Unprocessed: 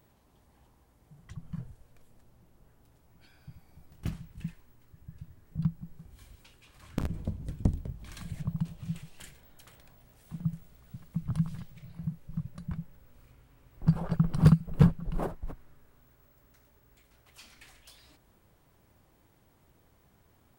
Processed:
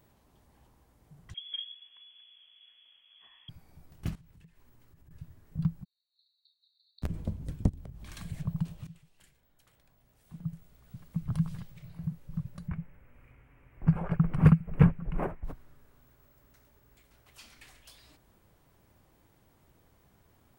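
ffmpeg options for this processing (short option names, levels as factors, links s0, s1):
-filter_complex "[0:a]asettb=1/sr,asplit=3[s0][s1][s2];[s0]atrim=end=1.344[s3];[s1]atrim=start=1.34:end=3.49,asetpts=PTS-STARTPTS,afade=t=in:d=0.004:c=qsin,afade=t=out:st=2.146:d=0.004:c=qsin,lowpass=f=2900:t=q:w=0.5098,lowpass=f=2900:t=q:w=0.6013,lowpass=f=2900:t=q:w=0.9,lowpass=f=2900:t=q:w=2.563,afreqshift=-3400[s4];[s2]atrim=start=3.486[s5];[s3][s4]acrossfade=d=0.004:c1=hsin:c2=qsin[s6];[s6][s5]acrossfade=d=0.004:c1=qsin:c2=hsin,asettb=1/sr,asplit=3[s7][s8][s9];[s7]atrim=end=4.154[s10];[s8]atrim=start=4.15:end=5.11,asetpts=PTS-STARTPTS,afade=t=in:d=0.004:c=qsin,afade=t=out:st=0.956:d=0.004:c=qsin,acompressor=threshold=0.002:ratio=6:attack=3.2:release=140:knee=1:detection=peak[s11];[s9]atrim=start=5.106[s12];[s10][s11]acrossfade=d=0.004:c1=hsin:c2=qsin[s13];[s13][s12]acrossfade=d=0.004:c1=qsin:c2=hsin,asplit=3[s14][s15][s16];[s14]afade=t=out:st=5.83:d=0.02[s17];[s15]asuperpass=centerf=4100:order=20:qfactor=4.4,afade=t=in:st=5.83:d=0.02,afade=t=out:st=7.02:d=0.02[s18];[s16]afade=t=in:st=7.02:d=0.02[s19];[s17][s18][s19]amix=inputs=3:normalize=0,asplit=3[s20][s21][s22];[s20]afade=t=out:st=7.68:d=0.02[s23];[s21]acompressor=threshold=0.0112:ratio=8:attack=3.2:release=140:knee=1:detection=peak,afade=t=in:st=7.68:d=0.02,afade=t=out:st=8.09:d=0.02[s24];[s22]afade=t=in:st=8.09:d=0.02[s25];[s23][s24][s25]amix=inputs=3:normalize=0,asettb=1/sr,asplit=3[s26][s27][s28];[s26]atrim=end=12.684[s29];[s27]atrim=start=12.68:end=15.44,asetpts=PTS-STARTPTS,afade=t=in:d=0.004:c=qsin,afade=t=out:st=2.756:d=0.004:c=qsin,highshelf=f=3100:t=q:w=3:g=-10[s30];[s28]atrim=start=15.436[s31];[s29][s30]acrossfade=d=0.004:c1=hsin:c2=qsin[s32];[s32][s31]acrossfade=d=0.004:c1=qsin:c2=hsin,asplit=2[s33][s34];[s33]atrim=end=8.87,asetpts=PTS-STARTPTS,afade=t=out:st=8.866:d=0.004:c=hsin:silence=0.177828[s35];[s34]atrim=start=8.87,asetpts=PTS-STARTPTS,afade=t=in:d=2.31:c=qua:silence=0.177828[s36];[s35][s36]concat=n=2:v=0:a=1"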